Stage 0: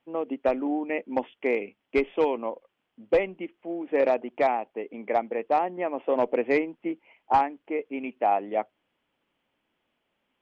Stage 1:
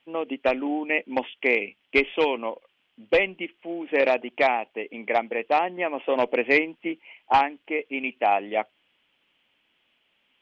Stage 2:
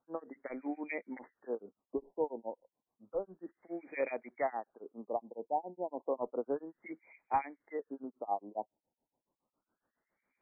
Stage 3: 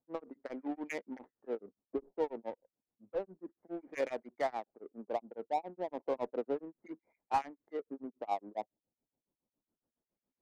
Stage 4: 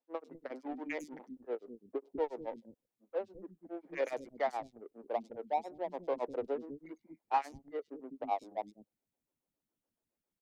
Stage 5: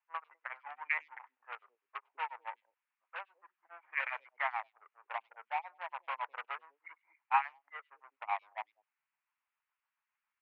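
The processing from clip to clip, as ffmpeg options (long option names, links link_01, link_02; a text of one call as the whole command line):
ffmpeg -i in.wav -af "equalizer=frequency=2900:width_type=o:width=1.5:gain=13.5" out.wav
ffmpeg -i in.wav -filter_complex "[0:a]acompressor=threshold=-28dB:ratio=1.5,acrossover=split=1900[link_01][link_02];[link_01]aeval=exprs='val(0)*(1-1/2+1/2*cos(2*PI*7.2*n/s))':channel_layout=same[link_03];[link_02]aeval=exprs='val(0)*(1-1/2-1/2*cos(2*PI*7.2*n/s))':channel_layout=same[link_04];[link_03][link_04]amix=inputs=2:normalize=0,afftfilt=real='re*lt(b*sr/1024,960*pow(2500/960,0.5+0.5*sin(2*PI*0.31*pts/sr)))':imag='im*lt(b*sr/1024,960*pow(2500/960,0.5+0.5*sin(2*PI*0.31*pts/sr)))':win_size=1024:overlap=0.75,volume=-5.5dB" out.wav
ffmpeg -i in.wav -af "adynamicsmooth=sensitivity=8:basefreq=540" out.wav
ffmpeg -i in.wav -filter_complex "[0:a]acrossover=split=280|4800[link_01][link_02][link_03];[link_03]adelay=100[link_04];[link_01]adelay=200[link_05];[link_05][link_02][link_04]amix=inputs=3:normalize=0,volume=1dB" out.wav
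ffmpeg -i in.wav -filter_complex "[0:a]asplit=2[link_01][link_02];[link_02]aeval=exprs='(mod(29.9*val(0)+1,2)-1)/29.9':channel_layout=same,volume=-10.5dB[link_03];[link_01][link_03]amix=inputs=2:normalize=0,asuperpass=centerf=1600:order=8:qfactor=0.91,volume=8.5dB" out.wav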